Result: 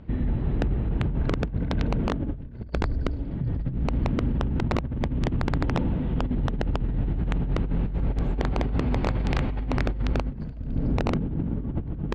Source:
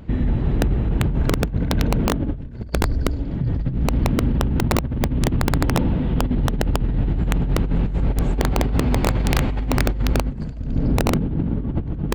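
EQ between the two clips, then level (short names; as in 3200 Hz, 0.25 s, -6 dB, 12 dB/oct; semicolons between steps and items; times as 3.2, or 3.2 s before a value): air absorption 150 m; -5.5 dB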